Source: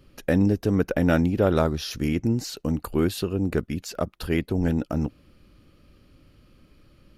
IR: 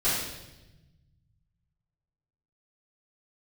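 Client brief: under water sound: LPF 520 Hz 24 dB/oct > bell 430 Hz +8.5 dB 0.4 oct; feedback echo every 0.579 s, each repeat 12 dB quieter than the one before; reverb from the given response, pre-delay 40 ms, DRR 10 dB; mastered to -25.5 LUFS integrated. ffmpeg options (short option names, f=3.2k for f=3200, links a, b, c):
-filter_complex "[0:a]aecho=1:1:579|1158|1737:0.251|0.0628|0.0157,asplit=2[a][b];[1:a]atrim=start_sample=2205,adelay=40[c];[b][c]afir=irnorm=-1:irlink=0,volume=-22dB[d];[a][d]amix=inputs=2:normalize=0,lowpass=f=520:w=0.5412,lowpass=f=520:w=1.3066,equalizer=f=430:t=o:w=0.4:g=8.5,volume=-2.5dB"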